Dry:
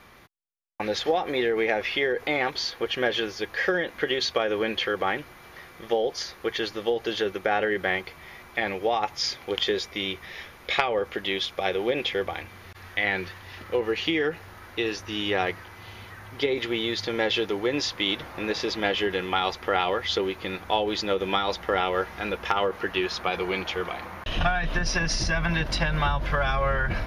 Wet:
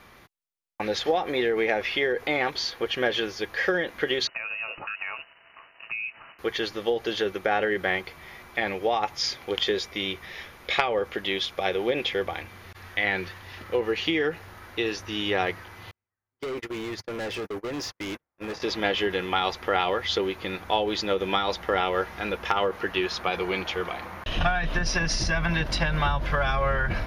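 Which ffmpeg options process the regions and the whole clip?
-filter_complex "[0:a]asettb=1/sr,asplit=3[s0][s1][s2];[s0]atrim=end=4.274[s3];[s1]atrim=start=4.27:end=6.39,asetpts=PTS-STARTPTS,afade=t=in:d=0.004:c=qsin,afade=t=out:st=2.116:d=0.004:c=qsin,aeval=exprs='sgn(val(0))*max(abs(val(0))-0.00335,0)':c=same,acompressor=threshold=0.0282:ratio=3:attack=3.2:release=140:knee=1:detection=peak,lowpass=f=2600:t=q:w=0.5098,lowpass=f=2600:t=q:w=0.6013,lowpass=f=2600:t=q:w=0.9,lowpass=f=2600:t=q:w=2.563,afreqshift=-3000[s4];[s2]atrim=start=6.386[s5];[s3][s4]acrossfade=d=0.004:c1=hsin:c2=qsin[s6];[s6][s5]acrossfade=d=0.004:c1=qsin:c2=hsin,asettb=1/sr,asplit=3[s7][s8][s9];[s7]atrim=end=15.914[s10];[s8]atrim=start=15.91:end=18.62,asetpts=PTS-STARTPTS,afade=t=in:d=0.004:c=qsin,afade=t=out:st=2.706:d=0.004:c=qsin,agate=range=0.00447:threshold=0.0282:ratio=16:release=100:detection=peak,equalizer=f=3600:w=1.9:g=-12.5,volume=29.9,asoftclip=hard,volume=0.0335[s11];[s9]atrim=start=18.616[s12];[s10][s11]acrossfade=d=0.004:c1=hsin:c2=qsin[s13];[s13][s12]acrossfade=d=0.004:c1=qsin:c2=hsin"

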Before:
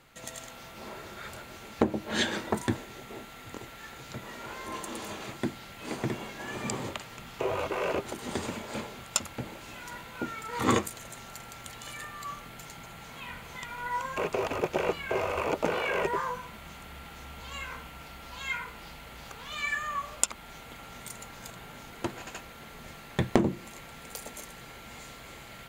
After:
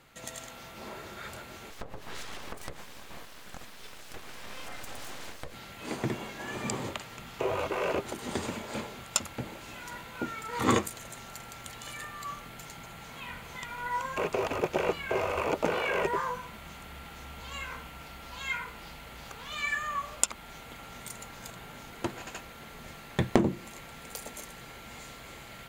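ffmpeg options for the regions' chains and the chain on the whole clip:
-filter_complex "[0:a]asettb=1/sr,asplit=3[s0][s1][s2];[s0]atrim=end=1.704[s3];[s1]atrim=start=1.7:end=5.54,asetpts=PTS-STARTPTS,afade=t=in:d=0.004:c=qsin,afade=t=out:st=3.836:d=0.004:c=qsin,aecho=1:1:3.9:0.39,atrim=end_sample=169344,acompressor=threshold=0.02:ratio=10:attack=3.2:release=140:knee=1:detection=peak,aeval=exprs='abs(val(0))':c=same[s4];[s2]atrim=start=5.536[s5];[s3][s4]acrossfade=d=0.004:c1=hsin:c2=qsin[s6];[s6][s5]acrossfade=d=0.004:c1=qsin:c2=hsin"

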